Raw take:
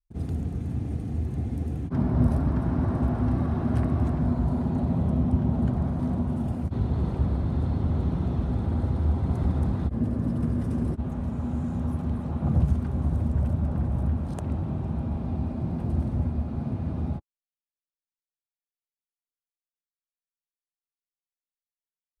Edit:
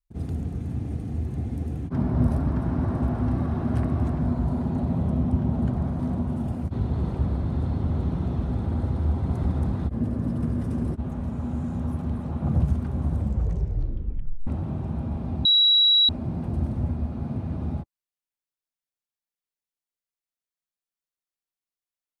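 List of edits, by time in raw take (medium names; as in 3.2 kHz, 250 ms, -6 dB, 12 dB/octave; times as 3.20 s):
13.15 s: tape stop 1.32 s
15.45 s: add tone 3.89 kHz -14.5 dBFS 0.64 s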